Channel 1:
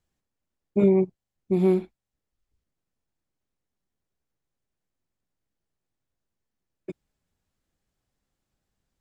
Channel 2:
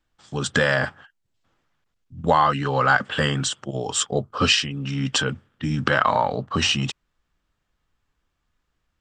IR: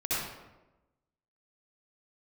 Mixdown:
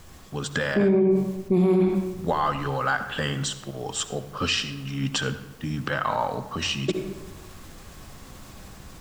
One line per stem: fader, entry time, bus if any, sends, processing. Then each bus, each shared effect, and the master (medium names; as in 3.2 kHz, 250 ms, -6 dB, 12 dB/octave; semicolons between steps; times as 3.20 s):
-4.0 dB, 0.00 s, send -9 dB, level rider gain up to 5 dB; peaking EQ 1.1 kHz +7.5 dB 0.22 oct; level flattener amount 50%
-2.5 dB, 0.00 s, send -19 dB, random flutter of the level, depth 60%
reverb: on, RT60 1.1 s, pre-delay 58 ms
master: peak limiter -13 dBFS, peak gain reduction 10 dB